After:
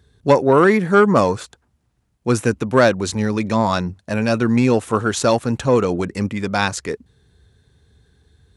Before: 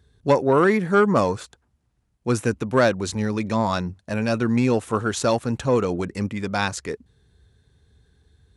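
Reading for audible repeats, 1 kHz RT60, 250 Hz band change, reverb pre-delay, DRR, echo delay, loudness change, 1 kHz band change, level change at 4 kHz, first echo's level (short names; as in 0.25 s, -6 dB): none, none, +4.5 dB, none, none, none, +4.5 dB, +4.5 dB, +4.5 dB, none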